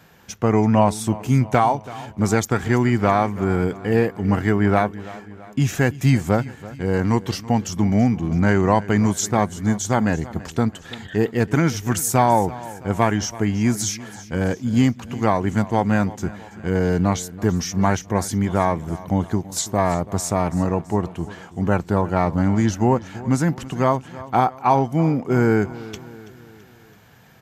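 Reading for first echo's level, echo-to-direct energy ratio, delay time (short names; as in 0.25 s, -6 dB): -18.0 dB, -16.5 dB, 0.331 s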